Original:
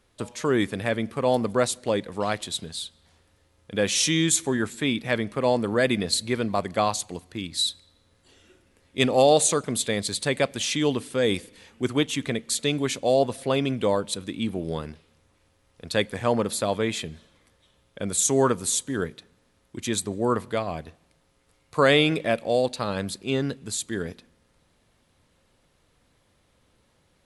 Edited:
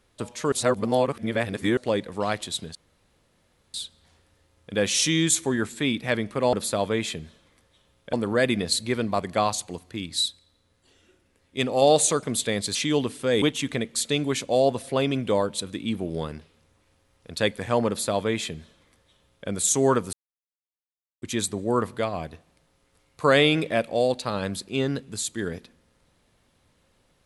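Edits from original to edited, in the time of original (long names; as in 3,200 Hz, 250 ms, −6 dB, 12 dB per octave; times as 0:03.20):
0:00.52–0:01.77: reverse
0:02.75: splice in room tone 0.99 s
0:07.67–0:09.23: clip gain −4 dB
0:10.16–0:10.66: remove
0:11.33–0:11.96: remove
0:16.42–0:18.02: duplicate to 0:05.54
0:18.67–0:19.76: silence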